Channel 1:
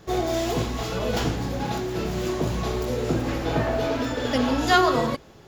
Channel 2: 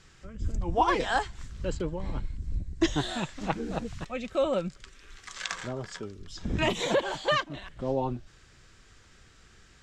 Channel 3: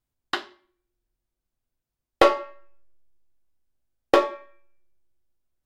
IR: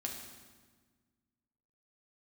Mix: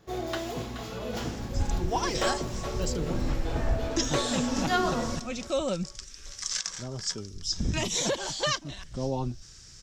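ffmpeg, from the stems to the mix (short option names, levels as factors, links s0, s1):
-filter_complex "[0:a]volume=0.251,asplit=2[s0][s1];[s1]volume=0.531[s2];[1:a]bass=f=250:g=7,treble=f=4000:g=12,alimiter=limit=0.178:level=0:latency=1:release=448,equalizer=f=5500:w=2.4:g=12,adelay=1150,volume=0.708[s3];[2:a]asoftclip=type=hard:threshold=0.141,volume=0.422,asplit=2[s4][s5];[s5]volume=0.282[s6];[3:a]atrim=start_sample=2205[s7];[s2][s7]afir=irnorm=-1:irlink=0[s8];[s6]aecho=0:1:425|850|1275|1700|2125|2550|2975|3400:1|0.55|0.303|0.166|0.0915|0.0503|0.0277|0.0152[s9];[s0][s3][s4][s8][s9]amix=inputs=5:normalize=0"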